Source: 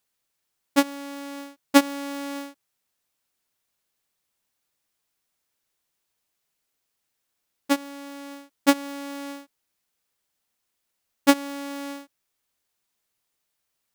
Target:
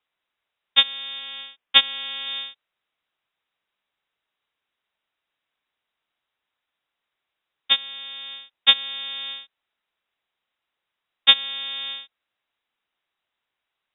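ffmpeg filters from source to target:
-filter_complex "[0:a]asettb=1/sr,asplit=3[a][b][c];[a]atrim=end=1.194[d];[b]atrim=start=1.19:end=2.27,asetpts=PTS-STARTPTS,afade=t=in:d=0.004:c=qsin,afade=t=out:st=1.076:d=0.004:c=qsin,highpass=310[e];[c]atrim=start=2.266[f];[d][e]acrossfade=d=0.004:c1=hsin:c2=qsin[g];[g][f]acrossfade=d=0.004:c1=qsin:c2=hsin,lowpass=f=3.3k:t=q:w=0.5098,lowpass=f=3.3k:t=q:w=0.6013,lowpass=f=3.3k:t=q:w=0.9,lowpass=f=3.3k:t=q:w=2.563,afreqshift=-3900,volume=3dB"

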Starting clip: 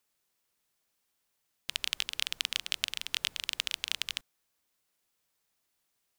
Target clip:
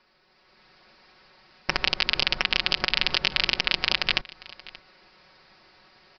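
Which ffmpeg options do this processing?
-filter_complex "[0:a]acompressor=threshold=-36dB:ratio=6,equalizer=f=3.3k:t=o:w=0.6:g=-8.5,aresample=11025,aeval=exprs='0.141*sin(PI/2*3.98*val(0)/0.141)':c=same,aresample=44100,aecho=1:1:5.4:0.7,asplit=2[a][b];[b]aecho=0:1:579:0.0944[c];[a][c]amix=inputs=2:normalize=0,dynaudnorm=f=150:g=7:m=8.5dB,equalizer=f=180:t=o:w=0.25:g=-5,volume=4.5dB"

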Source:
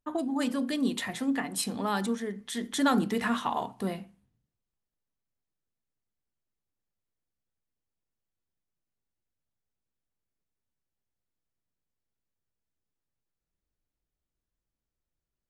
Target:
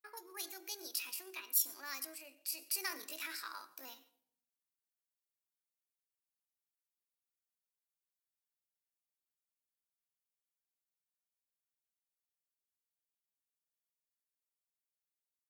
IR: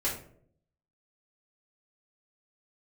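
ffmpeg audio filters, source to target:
-filter_complex "[0:a]aderivative,asplit=2[a][b];[1:a]atrim=start_sample=2205,adelay=89[c];[b][c]afir=irnorm=-1:irlink=0,volume=-24dB[d];[a][d]amix=inputs=2:normalize=0,asetrate=60591,aresample=44100,atempo=0.727827,volume=1dB"

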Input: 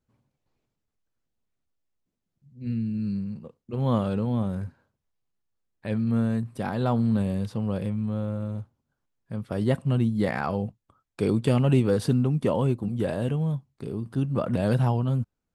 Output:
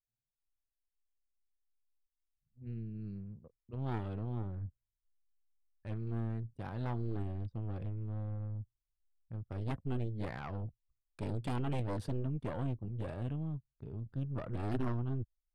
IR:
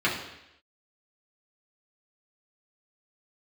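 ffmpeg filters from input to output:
-af "anlmdn=0.398,asubboost=boost=7:cutoff=84,aeval=exprs='0.447*(cos(1*acos(clip(val(0)/0.447,-1,1)))-cos(1*PI/2))+0.178*(cos(2*acos(clip(val(0)/0.447,-1,1)))-cos(2*PI/2))+0.224*(cos(3*acos(clip(val(0)/0.447,-1,1)))-cos(3*PI/2))':c=same,adynamicequalizer=threshold=0.00224:dfrequency=3100:dqfactor=0.7:tfrequency=3100:tqfactor=0.7:attack=5:release=100:ratio=0.375:range=2.5:mode=cutabove:tftype=highshelf,volume=-7dB"

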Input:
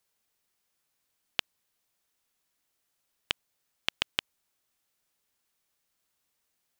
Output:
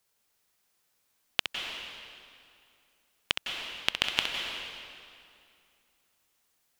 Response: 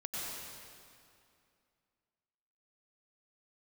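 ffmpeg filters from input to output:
-filter_complex "[0:a]asplit=2[a][b];[b]equalizer=f=120:w=1:g=-8[c];[1:a]atrim=start_sample=2205,adelay=65[d];[c][d]afir=irnorm=-1:irlink=0,volume=-3dB[e];[a][e]amix=inputs=2:normalize=0,volume=2.5dB"

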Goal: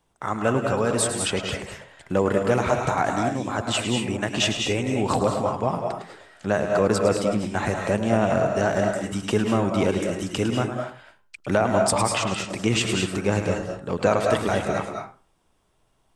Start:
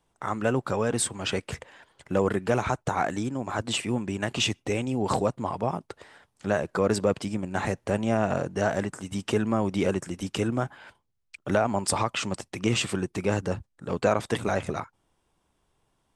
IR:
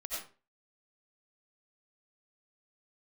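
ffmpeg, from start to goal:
-filter_complex "[0:a]asplit=2[a][b];[1:a]atrim=start_sample=2205,adelay=106[c];[b][c]afir=irnorm=-1:irlink=0,volume=-3.5dB[d];[a][d]amix=inputs=2:normalize=0,volume=2.5dB"

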